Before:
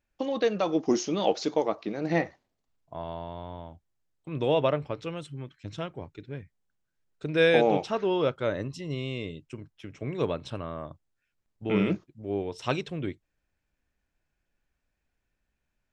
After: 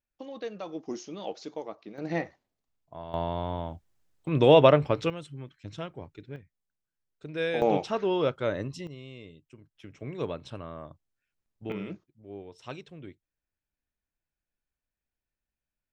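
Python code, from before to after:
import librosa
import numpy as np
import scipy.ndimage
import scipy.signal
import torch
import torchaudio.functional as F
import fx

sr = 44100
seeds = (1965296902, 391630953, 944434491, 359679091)

y = fx.gain(x, sr, db=fx.steps((0.0, -11.5), (1.98, -4.5), (3.14, 7.5), (5.1, -2.5), (6.36, -8.5), (7.62, -0.5), (8.87, -11.5), (9.75, -4.5), (11.72, -12.0)))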